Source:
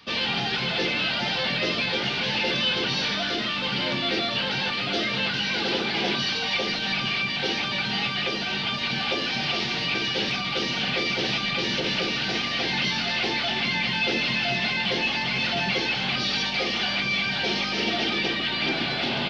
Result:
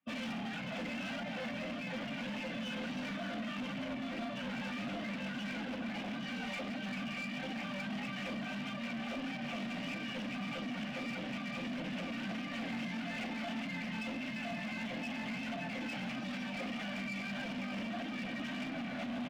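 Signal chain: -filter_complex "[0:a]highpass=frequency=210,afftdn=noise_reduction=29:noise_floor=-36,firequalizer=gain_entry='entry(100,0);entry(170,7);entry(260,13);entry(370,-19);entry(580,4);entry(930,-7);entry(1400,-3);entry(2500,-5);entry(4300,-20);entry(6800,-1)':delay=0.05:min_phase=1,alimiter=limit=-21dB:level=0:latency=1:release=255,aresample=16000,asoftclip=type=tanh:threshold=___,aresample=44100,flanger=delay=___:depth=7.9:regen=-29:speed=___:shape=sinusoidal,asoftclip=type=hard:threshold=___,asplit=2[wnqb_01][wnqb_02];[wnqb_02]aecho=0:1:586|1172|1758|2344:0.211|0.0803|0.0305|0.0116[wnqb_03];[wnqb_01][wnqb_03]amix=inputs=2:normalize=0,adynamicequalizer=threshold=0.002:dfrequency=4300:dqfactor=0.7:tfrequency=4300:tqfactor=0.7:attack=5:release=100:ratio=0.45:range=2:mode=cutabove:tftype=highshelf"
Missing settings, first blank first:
-29dB, 6.1, 1.6, -37dB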